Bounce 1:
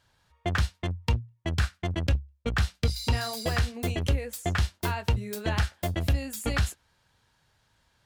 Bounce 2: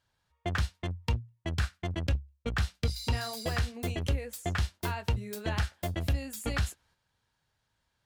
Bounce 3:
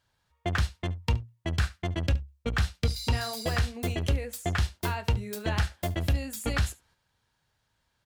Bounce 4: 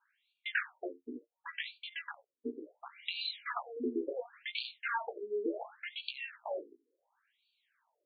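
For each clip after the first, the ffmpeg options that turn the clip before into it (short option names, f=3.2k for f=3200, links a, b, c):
-af "agate=range=-6dB:threshold=-59dB:ratio=16:detection=peak,volume=-4dB"
-af "aecho=1:1:71:0.1,volume=3dB"
-af "flanger=delay=15.5:depth=5.6:speed=0.8,asoftclip=type=tanh:threshold=-26.5dB,afftfilt=real='re*between(b*sr/1024,310*pow(3300/310,0.5+0.5*sin(2*PI*0.7*pts/sr))/1.41,310*pow(3300/310,0.5+0.5*sin(2*PI*0.7*pts/sr))*1.41)':imag='im*between(b*sr/1024,310*pow(3300/310,0.5+0.5*sin(2*PI*0.7*pts/sr))/1.41,310*pow(3300/310,0.5+0.5*sin(2*PI*0.7*pts/sr))*1.41)':win_size=1024:overlap=0.75,volume=7.5dB"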